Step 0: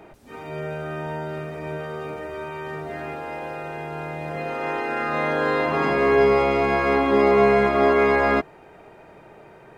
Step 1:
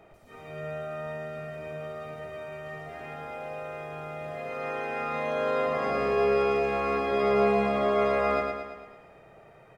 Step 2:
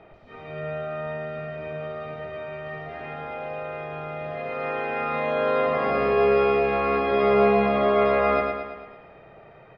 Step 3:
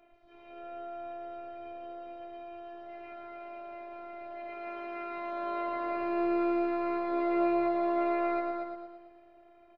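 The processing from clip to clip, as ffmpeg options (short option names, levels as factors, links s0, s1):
-af "aecho=1:1:1.6:0.43,aecho=1:1:112|224|336|448|560|672|784:0.631|0.347|0.191|0.105|0.0577|0.0318|0.0175,volume=0.355"
-af "lowpass=f=4200:w=0.5412,lowpass=f=4200:w=1.3066,volume=1.68"
-af "afftfilt=real='hypot(re,im)*cos(PI*b)':imag='0':win_size=512:overlap=0.75,aecho=1:1:232|464|696:0.562|0.124|0.0272,volume=0.355"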